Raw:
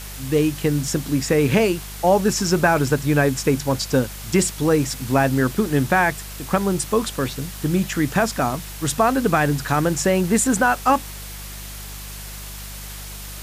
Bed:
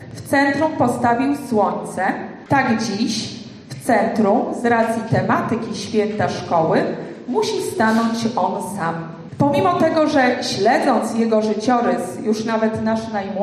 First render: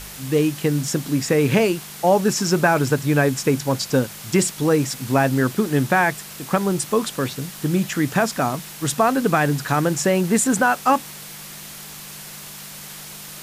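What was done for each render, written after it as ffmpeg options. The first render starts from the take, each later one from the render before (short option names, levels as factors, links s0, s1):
-af "bandreject=f=50:t=h:w=4,bandreject=f=100:t=h:w=4"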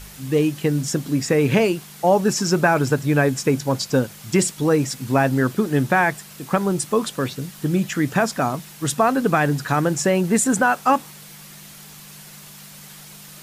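-af "afftdn=nr=6:nf=-37"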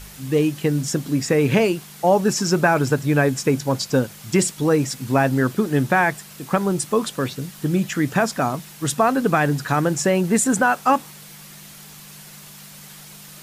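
-af anull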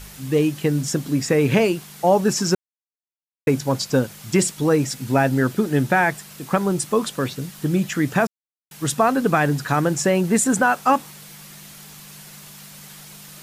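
-filter_complex "[0:a]asettb=1/sr,asplit=3[s0][s1][s2];[s0]atrim=end=4.834[s3];[s1]atrim=start=4.83:end=6.12,asetpts=PTS-STARTPTS,afade=t=in:d=0.004:c=qsin,afade=t=out:st=1.286:d=0.004:c=qsin,bandreject=f=1100:w=11[s4];[s2]atrim=start=6.116[s5];[s3][s4]acrossfade=d=0.004:c1=hsin:c2=qsin[s6];[s6][s5]acrossfade=d=0.004:c1=qsin:c2=hsin,asplit=5[s7][s8][s9][s10][s11];[s7]atrim=end=2.55,asetpts=PTS-STARTPTS,afade=t=out:st=2.546:d=0.004:c=hsin[s12];[s8]atrim=start=2.55:end=3.47,asetpts=PTS-STARTPTS,volume=0[s13];[s9]atrim=start=3.47:end=8.27,asetpts=PTS-STARTPTS,afade=t=in:d=0.004:c=hsin,afade=t=out:st=4.796:d=0.004:c=hsin[s14];[s10]atrim=start=8.27:end=8.71,asetpts=PTS-STARTPTS,volume=0[s15];[s11]atrim=start=8.71,asetpts=PTS-STARTPTS,afade=t=in:d=0.004:c=hsin[s16];[s12][s13][s14][s15][s16]concat=n=5:v=0:a=1"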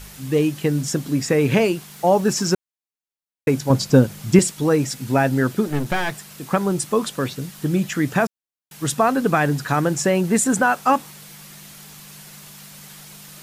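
-filter_complex "[0:a]asettb=1/sr,asplit=3[s0][s1][s2];[s0]atrim=end=1.914[s3];[s1]atrim=start=1.91:end=2.47,asetpts=PTS-STARTPTS,afade=t=in:d=0.004:c=qsin,afade=t=out:st=0.556:d=0.004:c=qsin,acrusher=bits=7:mix=0:aa=0.5[s4];[s2]atrim=start=2.466[s5];[s3][s4]acrossfade=d=0.004:c1=hsin:c2=qsin[s6];[s6][s5]acrossfade=d=0.004:c1=qsin:c2=hsin,asettb=1/sr,asplit=3[s7][s8][s9];[s7]atrim=end=3.704[s10];[s8]atrim=start=3.7:end=4.39,asetpts=PTS-STARTPTS,afade=t=in:d=0.004:c=qsin,afade=t=out:st=0.686:d=0.004:c=qsin,lowshelf=f=430:g=9[s11];[s9]atrim=start=4.386[s12];[s10][s11]acrossfade=d=0.004:c1=hsin:c2=qsin[s13];[s13][s12]acrossfade=d=0.004:c1=qsin:c2=hsin,asettb=1/sr,asplit=3[s14][s15][s16];[s14]atrim=end=5.674[s17];[s15]atrim=start=5.67:end=6.29,asetpts=PTS-STARTPTS,afade=t=in:d=0.004:c=qsin,afade=t=out:st=0.616:d=0.004:c=qsin,aeval=exprs='clip(val(0),-1,0.0355)':c=same[s18];[s16]atrim=start=6.286[s19];[s17][s18]acrossfade=d=0.004:c1=hsin:c2=qsin[s20];[s20][s19]acrossfade=d=0.004:c1=qsin:c2=hsin"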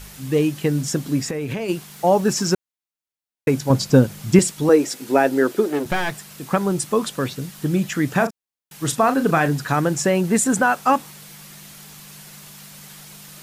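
-filter_complex "[0:a]asplit=3[s0][s1][s2];[s0]afade=t=out:st=1.21:d=0.02[s3];[s1]acompressor=threshold=0.0794:ratio=10:attack=3.2:release=140:knee=1:detection=peak,afade=t=in:st=1.21:d=0.02,afade=t=out:st=1.68:d=0.02[s4];[s2]afade=t=in:st=1.68:d=0.02[s5];[s3][s4][s5]amix=inputs=3:normalize=0,asettb=1/sr,asplit=3[s6][s7][s8];[s6]atrim=end=4.694[s9];[s7]atrim=start=4.69:end=5.86,asetpts=PTS-STARTPTS,afade=t=in:d=0.004:c=qsin,afade=t=out:st=1.166:d=0.004:c=qsin,highpass=f=360:t=q:w=2.1[s10];[s8]atrim=start=5.856[s11];[s9][s10]acrossfade=d=0.004:c1=hsin:c2=qsin[s12];[s12][s11]acrossfade=d=0.004:c1=qsin:c2=hsin,asettb=1/sr,asplit=3[s13][s14][s15];[s13]atrim=end=8.094[s16];[s14]atrim=start=8.09:end=9.48,asetpts=PTS-STARTPTS,afade=t=in:d=0.004:c=qsin,afade=t=out:st=1.386:d=0.004:c=qsin,asplit=2[s17][s18];[s18]adelay=37,volume=0.299[s19];[s17][s19]amix=inputs=2:normalize=0,atrim=end_sample=61299[s20];[s15]atrim=start=9.476[s21];[s16][s20]acrossfade=d=0.004:c1=hsin:c2=qsin[s22];[s22][s21]acrossfade=d=0.004:c1=qsin:c2=hsin"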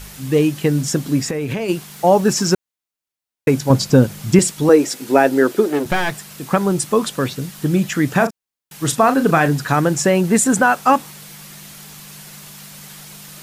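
-af "volume=1.5,alimiter=limit=0.891:level=0:latency=1"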